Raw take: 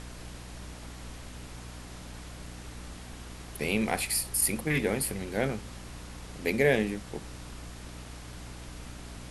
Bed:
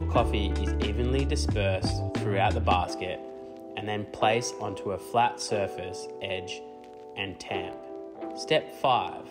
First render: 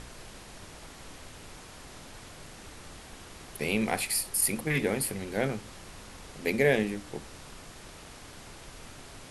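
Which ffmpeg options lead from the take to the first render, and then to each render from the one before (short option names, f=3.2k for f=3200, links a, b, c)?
-af "bandreject=f=60:t=h:w=4,bandreject=f=120:t=h:w=4,bandreject=f=180:t=h:w=4,bandreject=f=240:t=h:w=4,bandreject=f=300:t=h:w=4"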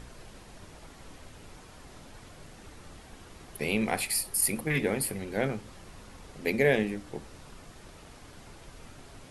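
-af "afftdn=nr=6:nf=-48"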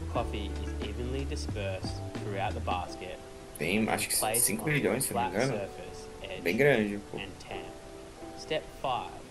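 -filter_complex "[1:a]volume=-8dB[a];[0:a][a]amix=inputs=2:normalize=0"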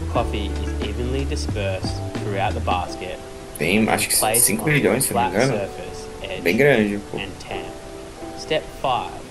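-af "volume=10.5dB,alimiter=limit=-3dB:level=0:latency=1"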